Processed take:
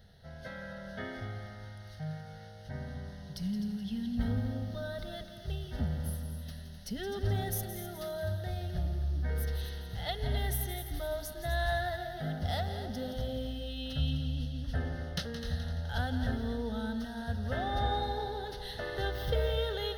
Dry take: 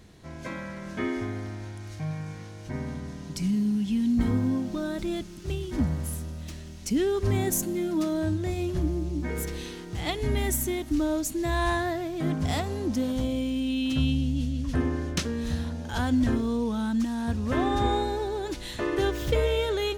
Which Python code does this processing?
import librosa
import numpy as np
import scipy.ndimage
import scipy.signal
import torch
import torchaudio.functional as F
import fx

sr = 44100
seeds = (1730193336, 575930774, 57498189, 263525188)

y = fx.fixed_phaser(x, sr, hz=1600.0, stages=8)
y = fx.echo_heads(y, sr, ms=85, heads='second and third', feedback_pct=49, wet_db=-11.0)
y = y * librosa.db_to_amplitude(-3.5)